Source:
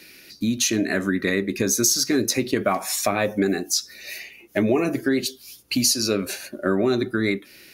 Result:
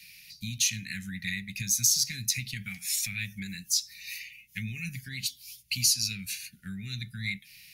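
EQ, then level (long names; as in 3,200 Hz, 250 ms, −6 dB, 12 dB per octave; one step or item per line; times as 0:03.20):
elliptic band-stop filter 160–2,200 Hz, stop band 40 dB
−3.0 dB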